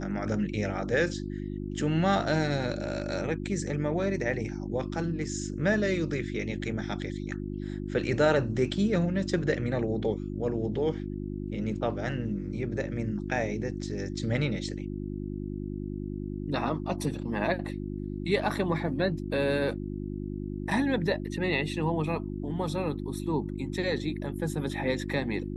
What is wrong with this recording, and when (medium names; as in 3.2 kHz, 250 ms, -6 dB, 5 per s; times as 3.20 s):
hum 50 Hz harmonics 7 -35 dBFS